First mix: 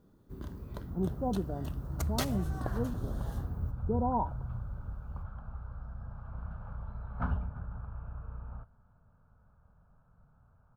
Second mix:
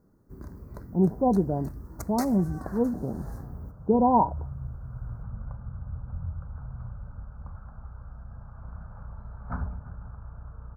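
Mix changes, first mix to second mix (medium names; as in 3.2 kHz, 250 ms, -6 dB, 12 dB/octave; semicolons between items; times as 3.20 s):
speech +10.5 dB; second sound: entry +2.30 s; master: add Butterworth band-stop 3.1 kHz, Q 1.1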